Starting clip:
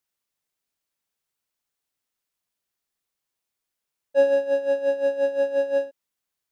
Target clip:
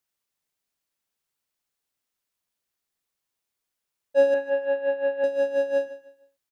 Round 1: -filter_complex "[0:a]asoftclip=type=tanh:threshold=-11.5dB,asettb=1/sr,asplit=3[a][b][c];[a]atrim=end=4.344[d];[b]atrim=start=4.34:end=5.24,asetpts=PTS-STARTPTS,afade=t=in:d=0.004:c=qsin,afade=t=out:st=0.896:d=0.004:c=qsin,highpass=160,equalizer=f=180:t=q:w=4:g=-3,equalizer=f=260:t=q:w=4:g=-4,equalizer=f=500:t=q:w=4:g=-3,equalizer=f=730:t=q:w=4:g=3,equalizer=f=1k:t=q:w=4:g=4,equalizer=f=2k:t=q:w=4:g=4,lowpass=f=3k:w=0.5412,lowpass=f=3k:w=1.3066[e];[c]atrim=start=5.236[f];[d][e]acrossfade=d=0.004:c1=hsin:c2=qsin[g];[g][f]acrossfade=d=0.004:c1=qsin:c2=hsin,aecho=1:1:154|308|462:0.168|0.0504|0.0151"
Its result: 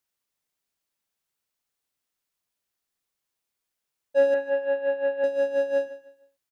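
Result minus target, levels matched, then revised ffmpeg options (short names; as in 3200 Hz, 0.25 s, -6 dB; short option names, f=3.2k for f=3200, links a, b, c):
soft clip: distortion +15 dB
-filter_complex "[0:a]asoftclip=type=tanh:threshold=-3dB,asettb=1/sr,asplit=3[a][b][c];[a]atrim=end=4.344[d];[b]atrim=start=4.34:end=5.24,asetpts=PTS-STARTPTS,afade=t=in:d=0.004:c=qsin,afade=t=out:st=0.896:d=0.004:c=qsin,highpass=160,equalizer=f=180:t=q:w=4:g=-3,equalizer=f=260:t=q:w=4:g=-4,equalizer=f=500:t=q:w=4:g=-3,equalizer=f=730:t=q:w=4:g=3,equalizer=f=1k:t=q:w=4:g=4,equalizer=f=2k:t=q:w=4:g=4,lowpass=f=3k:w=0.5412,lowpass=f=3k:w=1.3066[e];[c]atrim=start=5.236[f];[d][e]acrossfade=d=0.004:c1=hsin:c2=qsin[g];[g][f]acrossfade=d=0.004:c1=qsin:c2=hsin,aecho=1:1:154|308|462:0.168|0.0504|0.0151"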